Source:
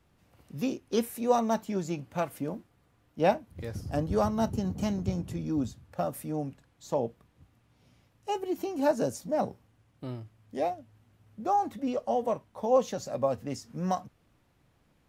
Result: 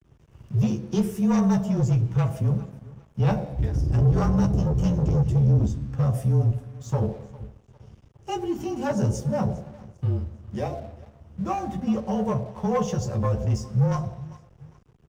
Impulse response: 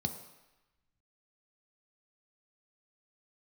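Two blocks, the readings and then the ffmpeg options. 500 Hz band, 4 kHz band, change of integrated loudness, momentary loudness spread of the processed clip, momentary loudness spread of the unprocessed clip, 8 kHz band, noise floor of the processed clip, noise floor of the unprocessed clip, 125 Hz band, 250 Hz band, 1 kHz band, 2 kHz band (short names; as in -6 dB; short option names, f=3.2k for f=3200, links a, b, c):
-1.0 dB, n/a, +6.5 dB, 16 LU, 13 LU, +2.5 dB, -56 dBFS, -68 dBFS, +16.5 dB, +7.0 dB, -1.5 dB, +1.5 dB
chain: -filter_complex "[0:a]bass=f=250:g=11,treble=f=4k:g=1,asplit=2[a][b];[b]alimiter=limit=-18.5dB:level=0:latency=1,volume=-3dB[c];[a][c]amix=inputs=2:normalize=0,highpass=f=77:p=1,bandreject=f=50:t=h:w=6,bandreject=f=100:t=h:w=6,bandreject=f=150:t=h:w=6,bandreject=f=200:t=h:w=6,aecho=1:1:403|806|1209:0.0841|0.032|0.0121,asplit=2[d][e];[1:a]atrim=start_sample=2205,afade=t=out:st=0.36:d=0.01,atrim=end_sample=16317,asetrate=41895,aresample=44100[f];[e][f]afir=irnorm=-1:irlink=0,volume=-9dB[g];[d][g]amix=inputs=2:normalize=0,asoftclip=type=tanh:threshold=-17.5dB,equalizer=f=12k:w=1.6:g=-12,asplit=2[h][i];[i]adelay=13,volume=-5.5dB[j];[h][j]amix=inputs=2:normalize=0,aeval=exprs='sgn(val(0))*max(abs(val(0))-0.00266,0)':c=same,afreqshift=-27"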